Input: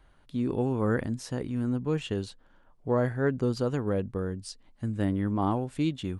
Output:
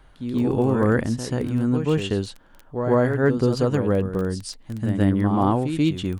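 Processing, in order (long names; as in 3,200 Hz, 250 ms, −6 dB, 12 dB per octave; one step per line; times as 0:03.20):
backwards echo 134 ms −7.5 dB
surface crackle 13 per second −35 dBFS
level +7 dB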